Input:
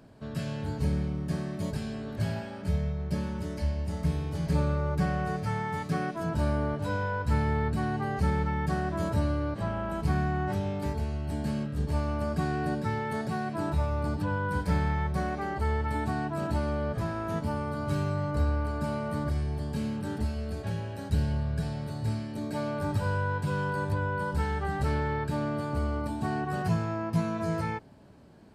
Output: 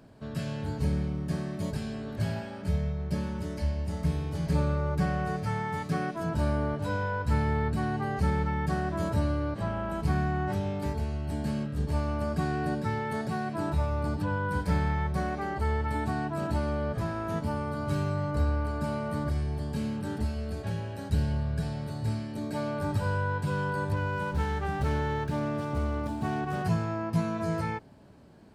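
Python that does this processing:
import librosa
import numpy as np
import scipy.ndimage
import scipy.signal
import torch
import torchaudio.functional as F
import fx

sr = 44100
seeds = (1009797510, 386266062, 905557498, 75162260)

y = fx.running_max(x, sr, window=5, at=(23.93, 26.64))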